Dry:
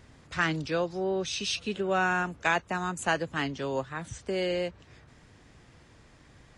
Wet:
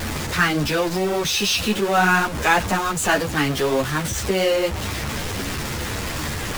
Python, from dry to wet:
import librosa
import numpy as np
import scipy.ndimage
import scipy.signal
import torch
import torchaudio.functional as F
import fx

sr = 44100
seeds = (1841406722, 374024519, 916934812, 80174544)

y = x + 0.5 * 10.0 ** (-27.0 / 20.0) * np.sign(x)
y = fx.ensemble(y, sr)
y = y * librosa.db_to_amplitude(9.0)